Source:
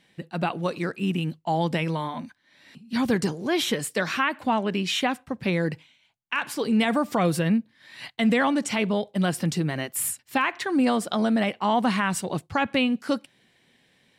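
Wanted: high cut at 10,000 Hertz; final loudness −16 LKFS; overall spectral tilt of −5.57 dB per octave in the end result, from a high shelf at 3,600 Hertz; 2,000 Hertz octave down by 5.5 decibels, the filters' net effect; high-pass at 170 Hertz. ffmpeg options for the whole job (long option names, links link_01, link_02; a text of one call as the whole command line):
ffmpeg -i in.wav -af "highpass=170,lowpass=10000,equalizer=frequency=2000:width_type=o:gain=-5.5,highshelf=frequency=3600:gain=-6,volume=11.5dB" out.wav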